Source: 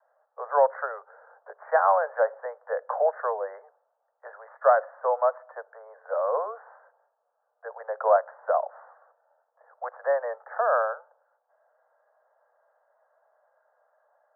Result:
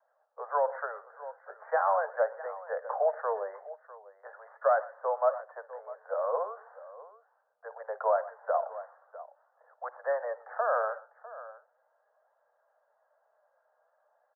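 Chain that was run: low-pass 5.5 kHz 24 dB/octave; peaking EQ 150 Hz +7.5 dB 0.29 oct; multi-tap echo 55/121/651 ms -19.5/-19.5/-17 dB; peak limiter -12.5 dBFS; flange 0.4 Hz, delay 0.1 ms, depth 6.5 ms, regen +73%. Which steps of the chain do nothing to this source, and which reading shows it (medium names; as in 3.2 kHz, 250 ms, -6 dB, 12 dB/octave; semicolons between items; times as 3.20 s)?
low-pass 5.5 kHz: input has nothing above 1.8 kHz; peaking EQ 150 Hz: input has nothing below 400 Hz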